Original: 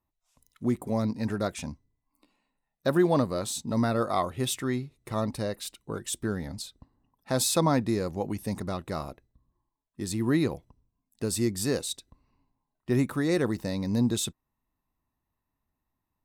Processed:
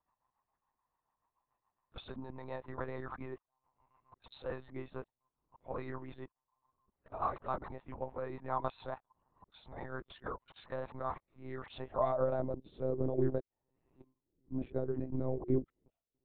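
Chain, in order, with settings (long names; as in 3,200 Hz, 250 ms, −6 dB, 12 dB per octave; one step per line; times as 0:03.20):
played backwards from end to start
downward compressor 10 to 1, threshold −33 dBFS, peak gain reduction 16 dB
rotating-speaker cabinet horn 7 Hz, later 0.6 Hz, at 0:10.52
band-pass filter sweep 970 Hz → 370 Hz, 0:11.43–0:13.02
one-pitch LPC vocoder at 8 kHz 130 Hz
level +11.5 dB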